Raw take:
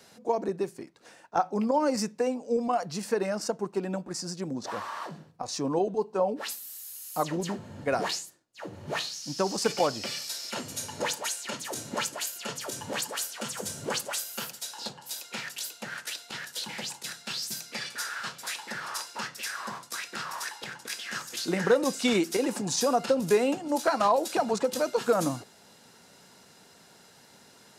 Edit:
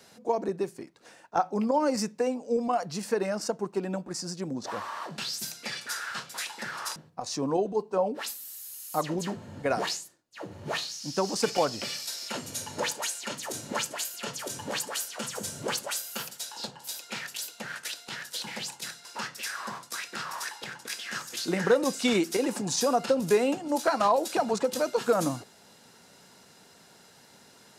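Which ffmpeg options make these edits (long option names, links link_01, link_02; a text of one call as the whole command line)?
ffmpeg -i in.wav -filter_complex "[0:a]asplit=4[link_01][link_02][link_03][link_04];[link_01]atrim=end=5.182[link_05];[link_02]atrim=start=17.268:end=19.052[link_06];[link_03]atrim=start=5.178:end=17.272[link_07];[link_04]atrim=start=19.048[link_08];[link_05][link_06]acrossfade=duration=0.004:curve1=hsin:curve2=hsin[link_09];[link_09][link_07]acrossfade=duration=0.004:curve1=hsin:curve2=hsin[link_10];[link_10][link_08]acrossfade=duration=0.004:curve1=hsin:curve2=hsin" out.wav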